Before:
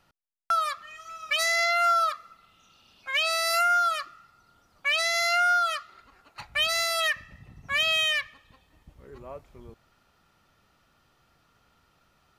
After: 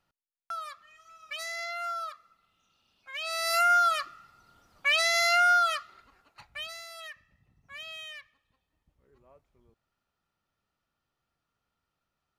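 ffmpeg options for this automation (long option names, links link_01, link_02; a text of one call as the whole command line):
ffmpeg -i in.wav -af "volume=0.5dB,afade=type=in:start_time=3.18:duration=0.52:silence=0.237137,afade=type=out:start_time=5.61:duration=0.79:silence=0.298538,afade=type=out:start_time=6.4:duration=0.41:silence=0.398107" out.wav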